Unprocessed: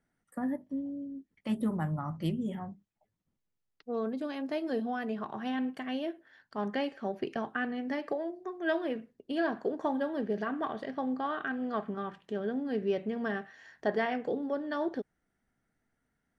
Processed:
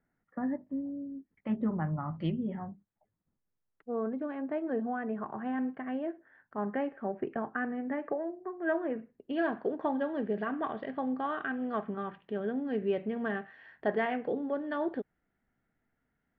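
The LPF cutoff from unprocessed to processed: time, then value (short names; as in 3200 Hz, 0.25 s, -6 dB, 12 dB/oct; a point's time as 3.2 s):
LPF 24 dB/oct
1.83 s 2200 Hz
2.21 s 3600 Hz
2.63 s 1900 Hz
8.89 s 1900 Hz
9.43 s 3100 Hz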